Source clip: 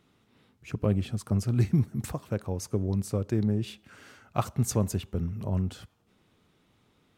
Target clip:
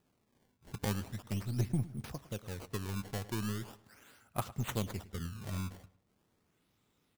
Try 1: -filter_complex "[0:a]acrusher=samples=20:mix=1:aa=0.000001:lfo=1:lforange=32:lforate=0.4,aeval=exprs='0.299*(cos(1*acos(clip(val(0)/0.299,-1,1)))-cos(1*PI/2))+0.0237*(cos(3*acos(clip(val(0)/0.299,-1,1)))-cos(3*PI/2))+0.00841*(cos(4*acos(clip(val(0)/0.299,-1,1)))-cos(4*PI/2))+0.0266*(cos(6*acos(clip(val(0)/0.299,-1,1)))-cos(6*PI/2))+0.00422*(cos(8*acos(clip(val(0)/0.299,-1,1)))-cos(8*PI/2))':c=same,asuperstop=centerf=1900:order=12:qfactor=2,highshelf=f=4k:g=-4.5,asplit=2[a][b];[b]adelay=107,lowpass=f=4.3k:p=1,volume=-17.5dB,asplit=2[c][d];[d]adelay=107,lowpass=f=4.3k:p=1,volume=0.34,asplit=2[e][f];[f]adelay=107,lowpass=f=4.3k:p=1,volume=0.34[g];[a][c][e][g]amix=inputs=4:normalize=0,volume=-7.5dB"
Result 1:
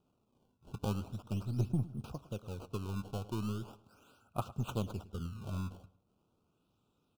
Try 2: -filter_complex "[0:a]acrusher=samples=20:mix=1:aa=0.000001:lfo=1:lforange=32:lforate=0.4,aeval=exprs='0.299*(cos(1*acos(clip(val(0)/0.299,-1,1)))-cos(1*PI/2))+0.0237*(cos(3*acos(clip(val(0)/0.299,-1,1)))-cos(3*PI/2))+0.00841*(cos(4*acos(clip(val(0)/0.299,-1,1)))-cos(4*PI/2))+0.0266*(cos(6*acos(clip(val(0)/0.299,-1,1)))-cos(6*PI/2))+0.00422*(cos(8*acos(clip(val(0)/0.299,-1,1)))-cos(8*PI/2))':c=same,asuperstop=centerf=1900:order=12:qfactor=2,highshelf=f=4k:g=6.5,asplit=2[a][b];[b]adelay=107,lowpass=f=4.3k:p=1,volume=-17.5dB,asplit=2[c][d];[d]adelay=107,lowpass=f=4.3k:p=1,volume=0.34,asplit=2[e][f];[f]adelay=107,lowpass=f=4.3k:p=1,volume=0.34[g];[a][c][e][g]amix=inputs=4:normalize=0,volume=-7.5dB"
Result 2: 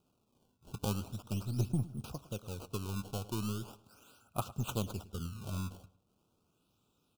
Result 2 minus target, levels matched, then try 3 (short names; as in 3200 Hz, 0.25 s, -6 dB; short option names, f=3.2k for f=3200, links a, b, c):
2000 Hz band -6.0 dB
-filter_complex "[0:a]acrusher=samples=20:mix=1:aa=0.000001:lfo=1:lforange=32:lforate=0.4,aeval=exprs='0.299*(cos(1*acos(clip(val(0)/0.299,-1,1)))-cos(1*PI/2))+0.0237*(cos(3*acos(clip(val(0)/0.299,-1,1)))-cos(3*PI/2))+0.00841*(cos(4*acos(clip(val(0)/0.299,-1,1)))-cos(4*PI/2))+0.0266*(cos(6*acos(clip(val(0)/0.299,-1,1)))-cos(6*PI/2))+0.00422*(cos(8*acos(clip(val(0)/0.299,-1,1)))-cos(8*PI/2))':c=same,highshelf=f=4k:g=6.5,asplit=2[a][b];[b]adelay=107,lowpass=f=4.3k:p=1,volume=-17.5dB,asplit=2[c][d];[d]adelay=107,lowpass=f=4.3k:p=1,volume=0.34,asplit=2[e][f];[f]adelay=107,lowpass=f=4.3k:p=1,volume=0.34[g];[a][c][e][g]amix=inputs=4:normalize=0,volume=-7.5dB"